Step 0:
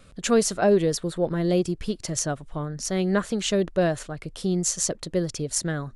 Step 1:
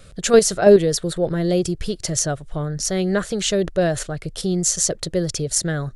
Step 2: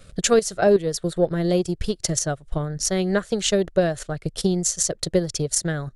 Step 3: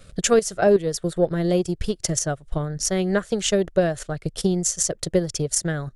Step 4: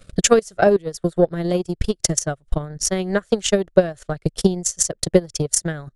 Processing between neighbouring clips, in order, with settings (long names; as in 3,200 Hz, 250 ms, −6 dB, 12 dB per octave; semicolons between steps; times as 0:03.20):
graphic EQ with 15 bands 250 Hz −9 dB, 1,000 Hz −8 dB, 2,500 Hz −4 dB; in parallel at +3 dB: output level in coarse steps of 20 dB; on the sum: level +4 dB
transient designer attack +7 dB, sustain −8 dB; boost into a limiter +5 dB; level −7.5 dB
dynamic equaliser 4,100 Hz, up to −6 dB, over −47 dBFS, Q 4.6
transient designer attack +9 dB, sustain −9 dB; level −2 dB